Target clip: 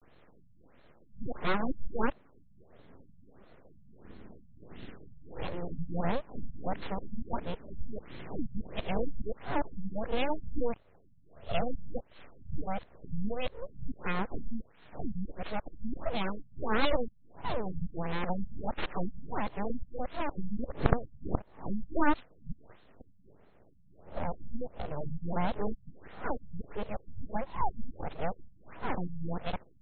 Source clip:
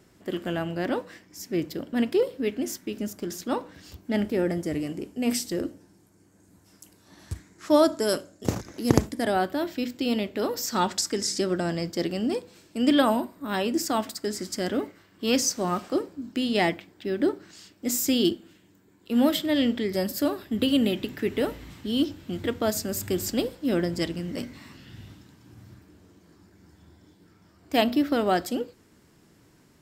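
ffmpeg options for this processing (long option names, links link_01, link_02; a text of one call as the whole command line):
ffmpeg -i in.wav -filter_complex "[0:a]areverse,asplit=2[link_01][link_02];[link_02]acompressor=threshold=-34dB:ratio=6,volume=1.5dB[link_03];[link_01][link_03]amix=inputs=2:normalize=0,aeval=exprs='abs(val(0))':channel_layout=same,afftfilt=real='re*lt(b*sr/1024,210*pow(4400/210,0.5+0.5*sin(2*PI*1.5*pts/sr)))':imag='im*lt(b*sr/1024,210*pow(4400/210,0.5+0.5*sin(2*PI*1.5*pts/sr)))':win_size=1024:overlap=0.75,volume=-5dB" out.wav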